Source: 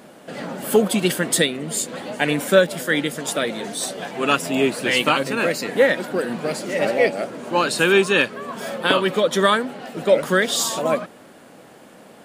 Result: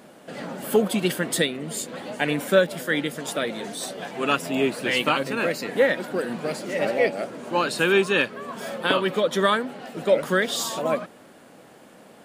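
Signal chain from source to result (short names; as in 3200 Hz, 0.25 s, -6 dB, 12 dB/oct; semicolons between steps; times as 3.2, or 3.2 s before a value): dynamic EQ 7900 Hz, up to -4 dB, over -37 dBFS, Q 0.82; gain -3.5 dB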